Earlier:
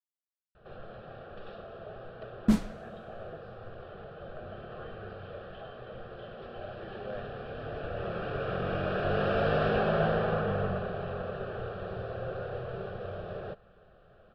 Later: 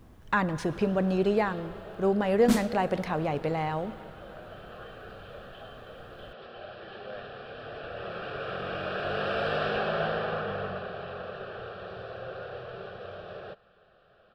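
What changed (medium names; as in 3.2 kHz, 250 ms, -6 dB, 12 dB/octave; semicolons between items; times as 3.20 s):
speech: unmuted; second sound +3.0 dB; master: add tilt EQ +2.5 dB/octave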